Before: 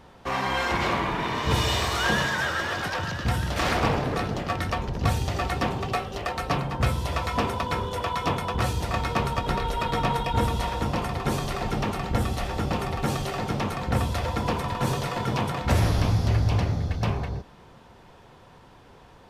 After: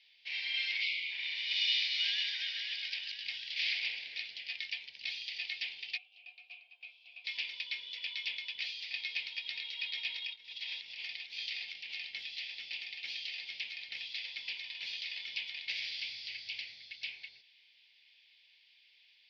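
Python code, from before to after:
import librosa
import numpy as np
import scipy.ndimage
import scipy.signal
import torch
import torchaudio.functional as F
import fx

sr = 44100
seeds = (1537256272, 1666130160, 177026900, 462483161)

y = fx.spec_box(x, sr, start_s=0.83, length_s=0.28, low_hz=560.0, high_hz=2000.0, gain_db=-17)
y = fx.vowel_filter(y, sr, vowel='a', at=(5.96, 7.24), fade=0.02)
y = fx.over_compress(y, sr, threshold_db=-28.0, ratio=-0.5, at=(10.18, 12.06))
y = scipy.signal.sosfilt(scipy.signal.ellip(3, 1.0, 40, [2200.0, 4900.0], 'bandpass', fs=sr, output='sos'), y)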